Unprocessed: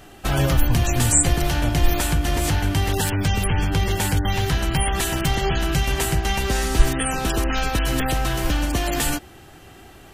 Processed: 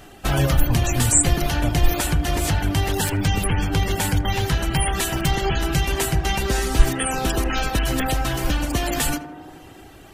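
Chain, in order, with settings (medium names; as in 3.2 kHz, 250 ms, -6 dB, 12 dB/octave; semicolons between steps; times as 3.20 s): reverb removal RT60 0.59 s; tape echo 79 ms, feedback 89%, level -11 dB, low-pass 1.5 kHz; trim +1 dB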